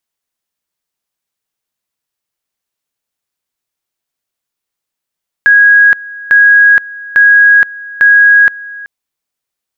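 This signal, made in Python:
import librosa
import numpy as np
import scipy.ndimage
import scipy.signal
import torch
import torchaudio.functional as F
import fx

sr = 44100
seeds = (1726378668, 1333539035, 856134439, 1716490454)

y = fx.two_level_tone(sr, hz=1650.0, level_db=-2.0, drop_db=21.0, high_s=0.47, low_s=0.38, rounds=4)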